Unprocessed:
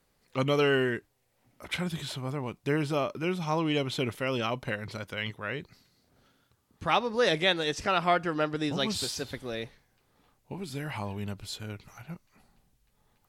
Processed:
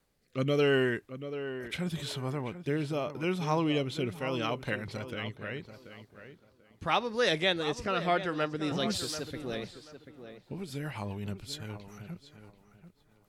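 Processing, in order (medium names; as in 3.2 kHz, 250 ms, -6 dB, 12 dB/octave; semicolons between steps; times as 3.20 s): rotary cabinet horn 0.8 Hz, later 7.5 Hz, at 8.27 s; tape echo 736 ms, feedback 26%, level -10 dB, low-pass 2.1 kHz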